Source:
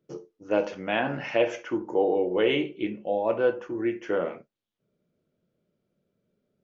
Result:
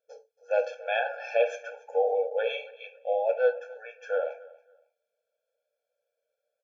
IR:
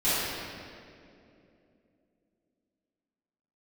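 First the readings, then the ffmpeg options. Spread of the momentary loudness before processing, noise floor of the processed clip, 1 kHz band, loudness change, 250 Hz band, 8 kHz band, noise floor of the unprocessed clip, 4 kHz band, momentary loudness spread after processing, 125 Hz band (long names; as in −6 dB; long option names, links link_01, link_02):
8 LU, −85 dBFS, −1.0 dB, −2.0 dB, below −35 dB, can't be measured, −81 dBFS, −6.0 dB, 14 LU, below −40 dB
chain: -af "aecho=1:1:278|556:0.0891|0.0205,afftfilt=real='re*eq(mod(floor(b*sr/1024/450),2),1)':imag='im*eq(mod(floor(b*sr/1024/450),2),1)':win_size=1024:overlap=0.75"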